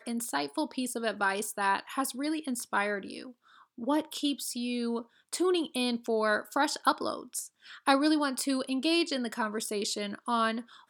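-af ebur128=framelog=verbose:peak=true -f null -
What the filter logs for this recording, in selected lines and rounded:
Integrated loudness:
  I:         -30.6 LUFS
  Threshold: -40.8 LUFS
Loudness range:
  LRA:         3.7 LU
  Threshold: -50.7 LUFS
  LRA low:   -32.8 LUFS
  LRA high:  -29.1 LUFS
True peak:
  Peak:       -8.6 dBFS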